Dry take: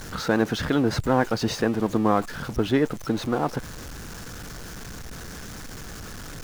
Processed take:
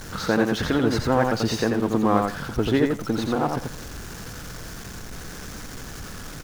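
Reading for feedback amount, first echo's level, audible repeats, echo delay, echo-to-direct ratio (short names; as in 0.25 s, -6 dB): 17%, -4.0 dB, 2, 87 ms, -4.0 dB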